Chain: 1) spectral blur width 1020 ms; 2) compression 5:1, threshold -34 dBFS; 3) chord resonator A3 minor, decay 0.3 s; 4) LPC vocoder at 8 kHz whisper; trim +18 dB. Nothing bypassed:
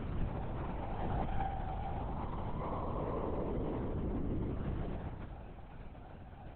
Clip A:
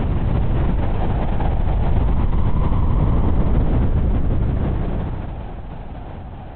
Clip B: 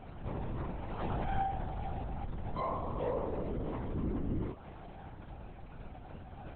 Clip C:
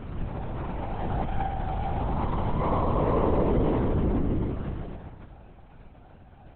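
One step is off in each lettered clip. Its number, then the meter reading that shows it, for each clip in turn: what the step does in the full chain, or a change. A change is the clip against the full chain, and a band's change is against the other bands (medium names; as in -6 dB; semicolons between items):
3, 125 Hz band +7.0 dB; 1, 125 Hz band -2.0 dB; 2, mean gain reduction 7.5 dB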